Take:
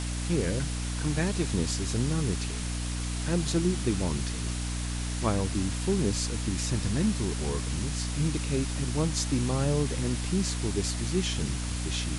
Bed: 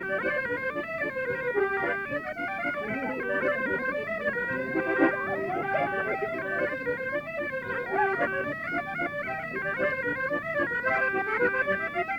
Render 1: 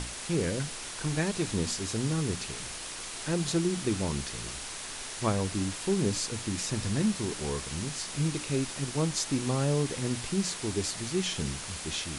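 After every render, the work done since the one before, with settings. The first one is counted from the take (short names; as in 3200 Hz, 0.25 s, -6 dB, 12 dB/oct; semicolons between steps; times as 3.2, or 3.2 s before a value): notches 60/120/180/240/300 Hz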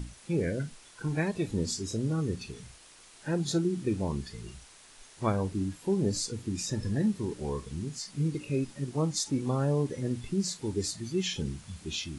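noise print and reduce 15 dB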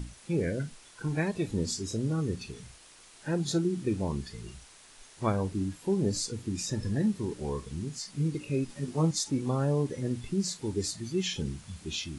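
8.68–9.11 doubler 12 ms -4 dB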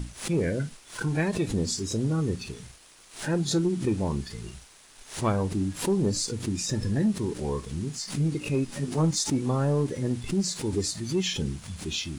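sample leveller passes 1; backwards sustainer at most 140 dB/s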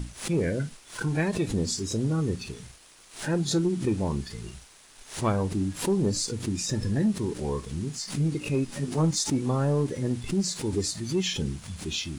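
nothing audible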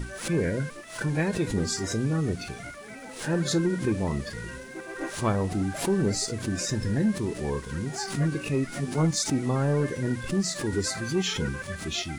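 add bed -11.5 dB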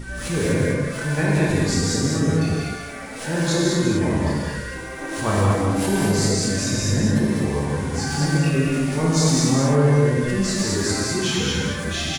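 echo 0.199 s -4.5 dB; non-linear reverb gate 0.28 s flat, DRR -5.5 dB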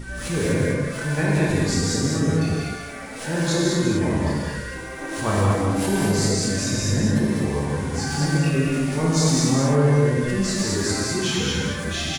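gain -1 dB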